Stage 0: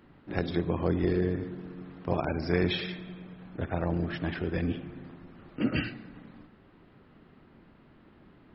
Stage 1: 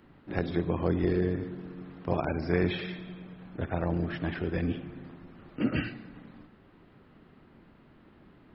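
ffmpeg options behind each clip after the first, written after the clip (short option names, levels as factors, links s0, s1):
-filter_complex "[0:a]acrossover=split=2900[s0][s1];[s1]acompressor=threshold=0.00316:ratio=4:attack=1:release=60[s2];[s0][s2]amix=inputs=2:normalize=0"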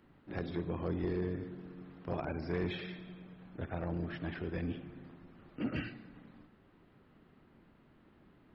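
-af "asoftclip=type=tanh:threshold=0.112,volume=0.473"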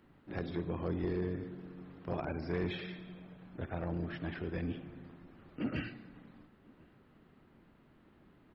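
-filter_complex "[0:a]asplit=2[s0][s1];[s1]adelay=1050,volume=0.0501,highshelf=f=4000:g=-23.6[s2];[s0][s2]amix=inputs=2:normalize=0"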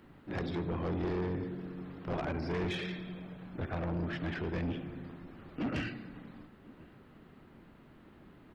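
-af "asoftclip=type=tanh:threshold=0.015,volume=2.11"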